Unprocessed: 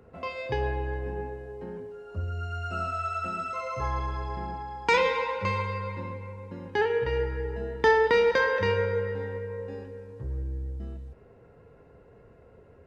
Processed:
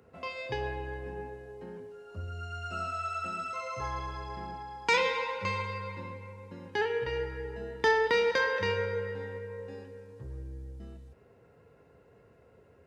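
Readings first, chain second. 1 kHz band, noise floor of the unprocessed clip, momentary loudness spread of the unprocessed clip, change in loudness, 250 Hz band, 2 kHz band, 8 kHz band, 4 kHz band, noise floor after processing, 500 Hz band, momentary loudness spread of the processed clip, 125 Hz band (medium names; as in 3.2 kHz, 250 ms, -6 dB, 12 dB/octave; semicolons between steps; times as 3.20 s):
-4.0 dB, -55 dBFS, 17 LU, -3.5 dB, -5.5 dB, -2.5 dB, no reading, 0.0 dB, -61 dBFS, -5.0 dB, 19 LU, -7.5 dB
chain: high-pass 71 Hz; treble shelf 2.3 kHz +8 dB; trim -5.5 dB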